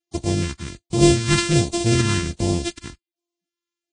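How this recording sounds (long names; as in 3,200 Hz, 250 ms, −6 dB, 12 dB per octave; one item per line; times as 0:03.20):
a buzz of ramps at a fixed pitch in blocks of 128 samples
phaser sweep stages 2, 1.3 Hz, lowest notch 600–1,500 Hz
Ogg Vorbis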